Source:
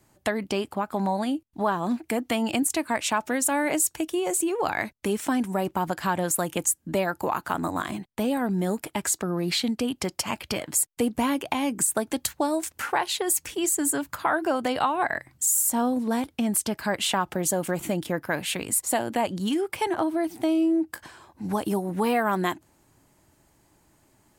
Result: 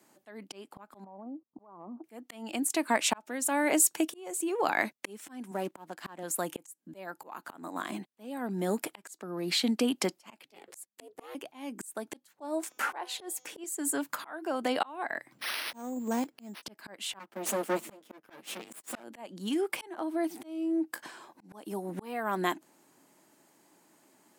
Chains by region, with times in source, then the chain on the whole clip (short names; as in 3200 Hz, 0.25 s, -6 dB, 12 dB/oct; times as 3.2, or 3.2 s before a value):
1.04–2.04 elliptic low-pass 1200 Hz + compressor 10:1, threshold -33 dBFS
5.51–6.23 G.711 law mismatch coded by A + HPF 77 Hz 24 dB/oct + Doppler distortion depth 0.14 ms
10.45–11.35 ring modulator 210 Hz + notches 50/100/150/200 Hz
12.33–13.64 bell 610 Hz +8 dB 2.6 oct + de-hum 252.6 Hz, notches 28
15.32–16.63 sample sorter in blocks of 8 samples + upward compressor, threshold -41 dBFS + careless resampling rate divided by 6×, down filtered, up hold
17.19–19.04 minimum comb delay 8.9 ms + HPF 60 Hz + gate -34 dBFS, range -7 dB
whole clip: HPF 200 Hz 24 dB/oct; auto swell 0.648 s